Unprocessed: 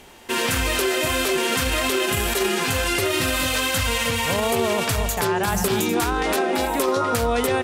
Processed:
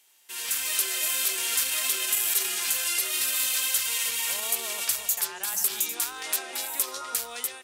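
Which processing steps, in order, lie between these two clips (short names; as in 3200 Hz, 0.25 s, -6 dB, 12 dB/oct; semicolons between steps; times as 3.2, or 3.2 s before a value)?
differentiator; AGC gain up to 12 dB; gain -8.5 dB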